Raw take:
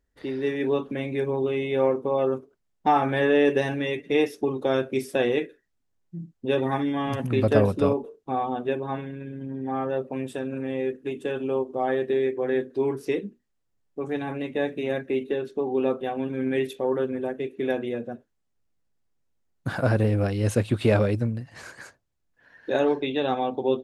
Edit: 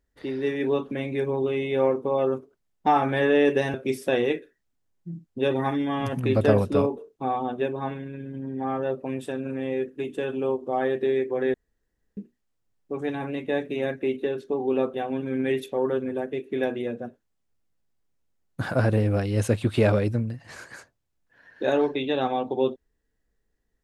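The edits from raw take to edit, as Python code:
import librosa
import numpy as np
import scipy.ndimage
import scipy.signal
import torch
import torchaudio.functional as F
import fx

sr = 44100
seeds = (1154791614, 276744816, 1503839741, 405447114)

y = fx.edit(x, sr, fx.cut(start_s=3.74, length_s=1.07),
    fx.room_tone_fill(start_s=12.61, length_s=0.63), tone=tone)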